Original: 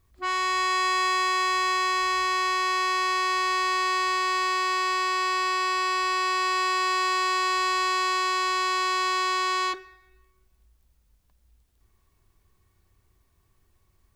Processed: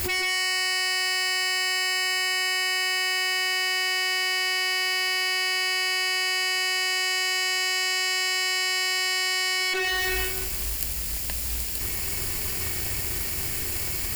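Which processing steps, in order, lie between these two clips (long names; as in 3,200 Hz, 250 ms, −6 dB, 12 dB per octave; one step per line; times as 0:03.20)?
lower of the sound and its delayed copy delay 0.4 ms
spectral tilt +2.5 dB per octave
on a send: backwards echo 133 ms −11.5 dB
on the sum: envelope flattener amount 100%
level −1 dB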